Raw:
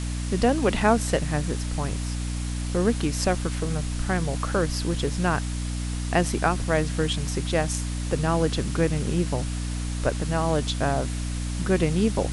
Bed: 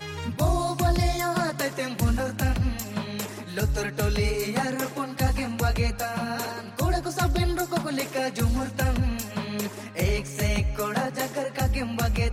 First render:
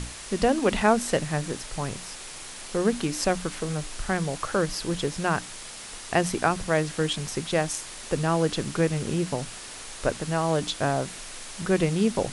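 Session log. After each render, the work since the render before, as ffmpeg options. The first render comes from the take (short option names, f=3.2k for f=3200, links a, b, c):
-af "bandreject=f=60:t=h:w=6,bandreject=f=120:t=h:w=6,bandreject=f=180:t=h:w=6,bandreject=f=240:t=h:w=6,bandreject=f=300:t=h:w=6"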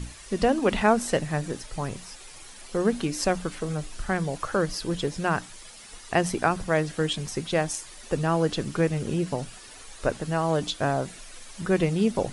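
-af "afftdn=nr=10:nf=-41"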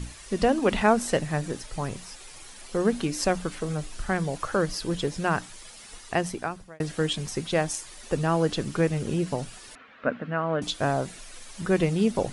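-filter_complex "[0:a]asettb=1/sr,asplit=3[a][b][c];[a]atrim=end=9.754[d];[b]atrim=start=9.75:end=10.62,asetpts=PTS-STARTPTS,afade=t=in:d=0.004:c=qsin,afade=t=out:st=0.866:d=0.004:c=qsin,highpass=190,equalizer=f=240:t=q:w=4:g=9,equalizer=f=370:t=q:w=4:g=-10,equalizer=f=850:t=q:w=4:g=-7,equalizer=f=1.4k:t=q:w=4:g=5,lowpass=f=2.6k:w=0.5412,lowpass=f=2.6k:w=1.3066[e];[c]atrim=start=10.616[f];[d][e]acrossfade=d=0.004:c1=hsin:c2=qsin[g];[g][f]acrossfade=d=0.004:c1=qsin:c2=hsin,asplit=2[h][i];[h]atrim=end=6.8,asetpts=PTS-STARTPTS,afade=t=out:st=5.95:d=0.85[j];[i]atrim=start=6.8,asetpts=PTS-STARTPTS,afade=t=in:d=0.004:c=hsin[k];[j][k]concat=n=2:v=0:a=1"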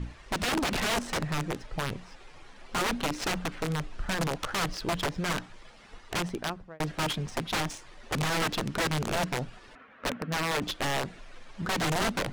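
-af "aeval=exprs='(mod(12.6*val(0)+1,2)-1)/12.6':c=same,adynamicsmooth=sensitivity=5:basefreq=2.3k"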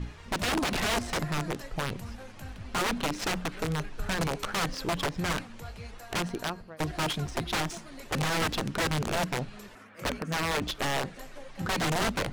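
-filter_complex "[1:a]volume=-18.5dB[a];[0:a][a]amix=inputs=2:normalize=0"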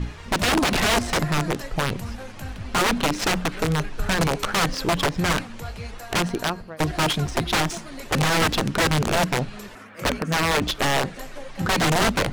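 -af "volume=8dB"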